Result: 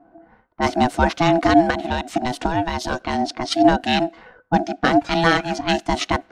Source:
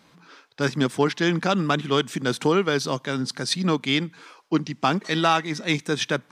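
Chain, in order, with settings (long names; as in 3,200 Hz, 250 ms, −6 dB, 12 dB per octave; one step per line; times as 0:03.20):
low-pass that shuts in the quiet parts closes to 580 Hz, open at −20.5 dBFS
0:01.70–0:03.02: downward compressor, threshold −22 dBFS, peak gain reduction 7.5 dB
hollow resonant body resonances 200/1,000 Hz, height 12 dB, ringing for 50 ms
ring modulation 500 Hz
level +4 dB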